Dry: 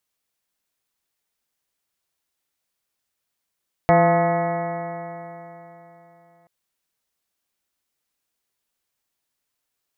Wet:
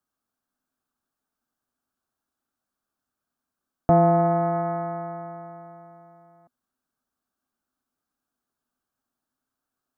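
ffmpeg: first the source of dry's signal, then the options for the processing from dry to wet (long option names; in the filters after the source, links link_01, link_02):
-f lavfi -i "aevalsrc='0.126*pow(10,-3*t/3.49)*sin(2*PI*167.29*t)+0.0596*pow(10,-3*t/3.49)*sin(2*PI*336.33*t)+0.1*pow(10,-3*t/3.49)*sin(2*PI*508.83*t)+0.224*pow(10,-3*t/3.49)*sin(2*PI*686.45*t)+0.075*pow(10,-3*t/3.49)*sin(2*PI*870.77*t)+0.0447*pow(10,-3*t/3.49)*sin(2*PI*1063.25*t)+0.0447*pow(10,-3*t/3.49)*sin(2*PI*1265.28*t)+0.0141*pow(10,-3*t/3.49)*sin(2*PI*1478.08*t)+0.0266*pow(10,-3*t/3.49)*sin(2*PI*1702.77*t)+0.0398*pow(10,-3*t/3.49)*sin(2*PI*1940.36*t)+0.0299*pow(10,-3*t/3.49)*sin(2*PI*2191.73*t)':duration=2.58:sample_rate=44100"
-filter_complex "[0:a]highshelf=frequency=1500:width_type=q:width=3:gain=-9,acrossover=split=310|850[link_01][link_02][link_03];[link_03]alimiter=level_in=2dB:limit=-24dB:level=0:latency=1,volume=-2dB[link_04];[link_01][link_02][link_04]amix=inputs=3:normalize=0,equalizer=frequency=250:width_type=o:width=0.33:gain=12,equalizer=frequency=500:width_type=o:width=0.33:gain=-6,equalizer=frequency=1000:width_type=o:width=0.33:gain=-9,equalizer=frequency=1600:width_type=o:width=0.33:gain=9"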